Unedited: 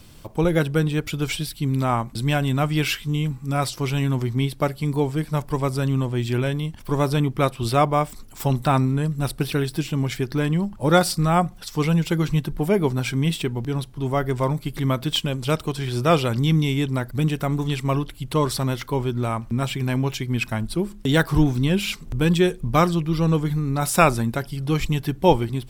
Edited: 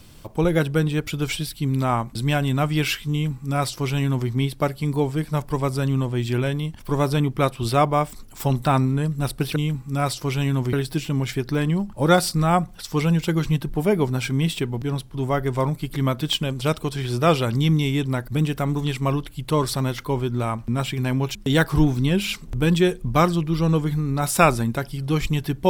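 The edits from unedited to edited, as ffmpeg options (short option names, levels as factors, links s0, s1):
-filter_complex "[0:a]asplit=4[s0][s1][s2][s3];[s0]atrim=end=9.562[s4];[s1]atrim=start=3.118:end=4.292[s5];[s2]atrim=start=9.558:end=20.182[s6];[s3]atrim=start=20.938[s7];[s4][s5]acrossfade=d=0.004:c1=hsin:c2=hsin[s8];[s8][s6]acrossfade=d=0.004:c1=hsin:c2=hsin[s9];[s9][s7]acrossfade=d=0.004:c1=hsin:c2=hsin"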